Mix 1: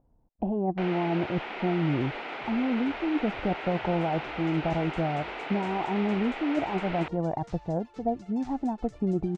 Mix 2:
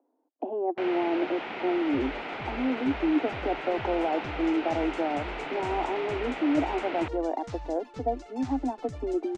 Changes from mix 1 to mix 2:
speech: add steep high-pass 260 Hz 96 dB/oct; second sound +5.5 dB; master: add low shelf 190 Hz +11.5 dB

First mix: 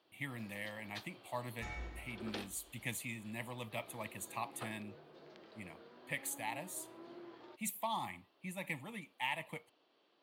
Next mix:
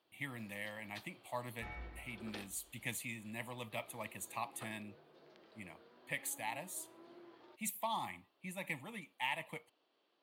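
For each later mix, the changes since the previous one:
first sound -4.5 dB; second sound: add air absorption 270 m; master: add low shelf 220 Hz -3.5 dB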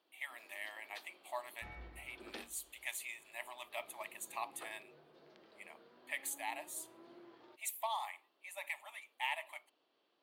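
speech: add brick-wall FIR high-pass 560 Hz; second sound -3.5 dB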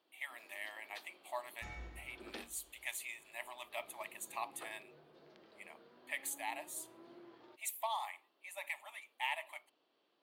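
second sound: remove air absorption 270 m; master: add low shelf 220 Hz +3.5 dB

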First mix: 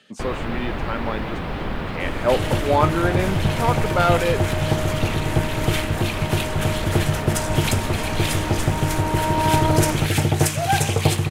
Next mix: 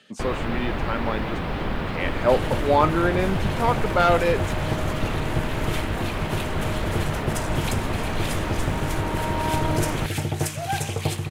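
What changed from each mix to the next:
second sound -7.0 dB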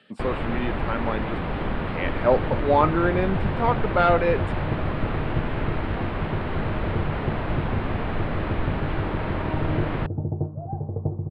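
second sound: add Gaussian blur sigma 13 samples; master: add running mean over 7 samples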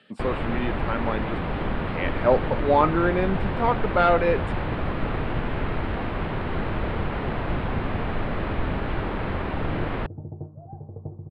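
second sound -9.5 dB

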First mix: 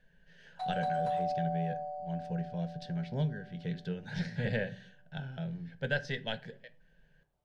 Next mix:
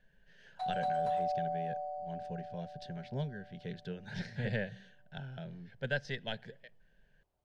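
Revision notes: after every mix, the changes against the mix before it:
reverb: off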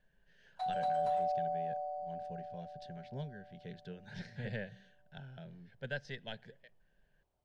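speech -5.5 dB

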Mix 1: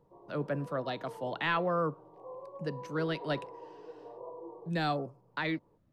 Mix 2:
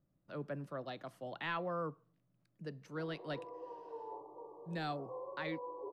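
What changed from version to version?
speech -8.5 dB; background: entry +2.85 s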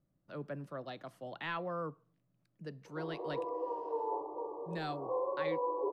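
background +10.5 dB

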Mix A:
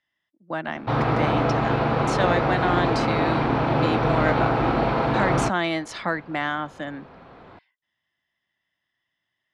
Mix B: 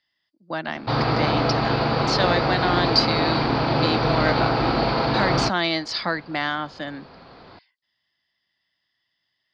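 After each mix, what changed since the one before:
master: add synth low-pass 4700 Hz, resonance Q 11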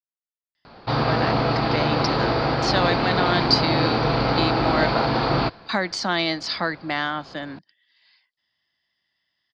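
speech: entry +0.55 s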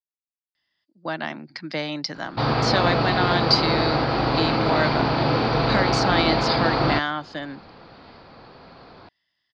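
background: entry +1.50 s

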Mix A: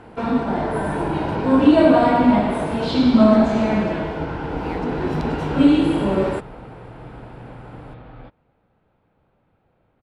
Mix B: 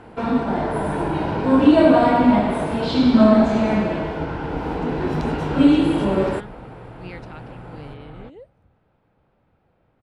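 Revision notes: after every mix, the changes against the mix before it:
speech: entry +2.40 s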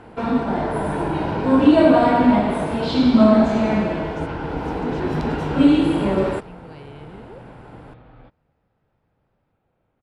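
speech: entry -1.05 s; second sound -6.0 dB

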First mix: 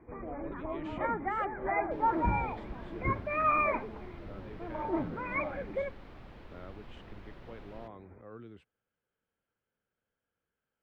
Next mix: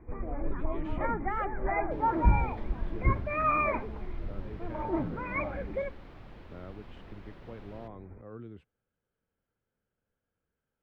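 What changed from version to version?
speech: add tilt -2 dB/oct; first sound: remove HPF 190 Hz 6 dB/oct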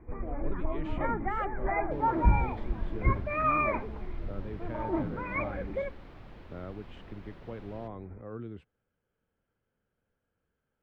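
speech +4.0 dB

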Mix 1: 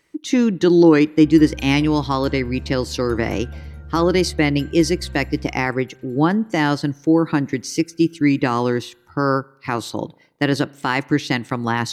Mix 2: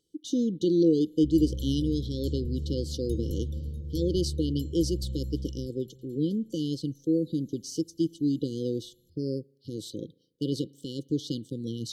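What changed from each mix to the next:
speech -10.0 dB; master: add brick-wall FIR band-stop 540–2900 Hz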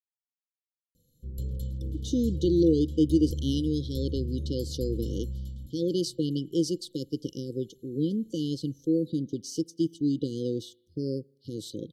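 speech: entry +1.80 s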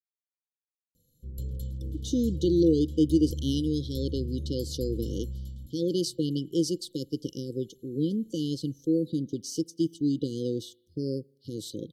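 background: send off; master: add high shelf 7600 Hz +5 dB

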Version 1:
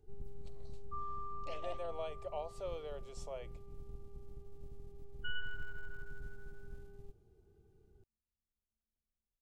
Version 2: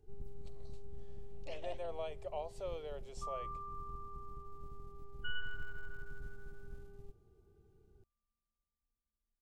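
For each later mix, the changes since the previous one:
second sound: entry +2.30 s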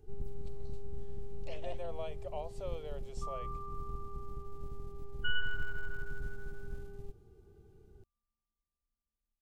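first sound +7.0 dB

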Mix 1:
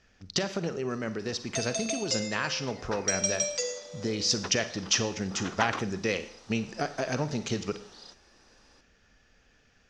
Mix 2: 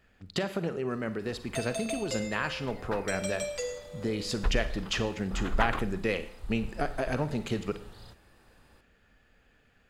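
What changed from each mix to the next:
second sound: remove HPF 210 Hz 24 dB/oct; master: remove synth low-pass 5800 Hz, resonance Q 8.3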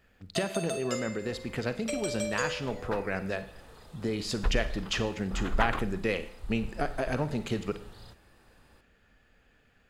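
first sound: entry -1.20 s

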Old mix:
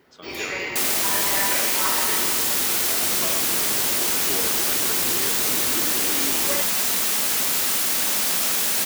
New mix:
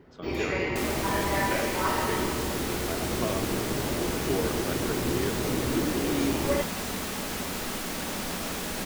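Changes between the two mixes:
second sound -4.0 dB; master: add tilt -3.5 dB/oct

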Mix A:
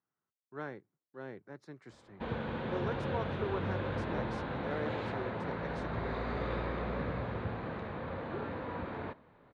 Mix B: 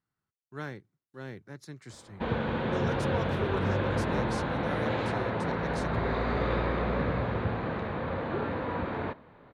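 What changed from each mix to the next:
speech: remove band-pass 640 Hz, Q 0.6; background +7.0 dB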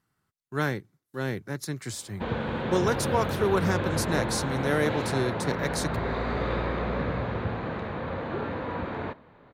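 speech +11.0 dB; master: add bell 14000 Hz +14 dB 0.92 oct

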